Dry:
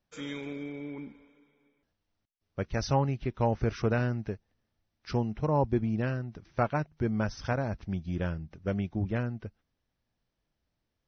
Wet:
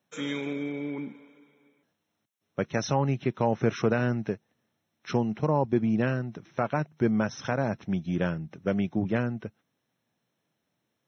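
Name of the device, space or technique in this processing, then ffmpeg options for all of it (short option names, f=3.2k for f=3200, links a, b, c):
PA system with an anti-feedback notch: -af "highpass=f=130:w=0.5412,highpass=f=130:w=1.3066,asuperstop=centerf=4700:order=12:qfactor=5.1,alimiter=limit=-19dB:level=0:latency=1:release=141,volume=6dB"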